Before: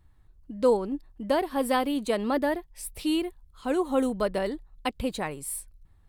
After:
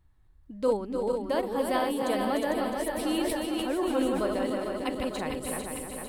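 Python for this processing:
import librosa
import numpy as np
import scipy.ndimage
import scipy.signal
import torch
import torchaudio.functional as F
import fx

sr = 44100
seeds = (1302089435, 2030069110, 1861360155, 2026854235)

y = fx.reverse_delay_fb(x, sr, ms=225, feedback_pct=75, wet_db=-4.0)
y = y + 10.0 ** (-7.0 / 20.0) * np.pad(y, (int(300 * sr / 1000.0), 0))[:len(y)]
y = fx.sustainer(y, sr, db_per_s=21.0, at=(2.91, 4.23))
y = F.gain(torch.from_numpy(y), -4.5).numpy()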